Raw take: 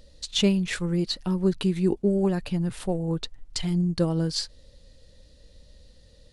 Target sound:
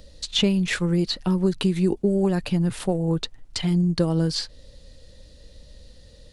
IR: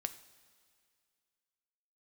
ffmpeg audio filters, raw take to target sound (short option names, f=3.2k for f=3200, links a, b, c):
-filter_complex "[0:a]acrossover=split=83|4000[a][b][c];[a]acompressor=threshold=-44dB:ratio=4[d];[b]acompressor=threshold=-23dB:ratio=4[e];[c]acompressor=threshold=-39dB:ratio=4[f];[d][e][f]amix=inputs=3:normalize=0,volume=5.5dB"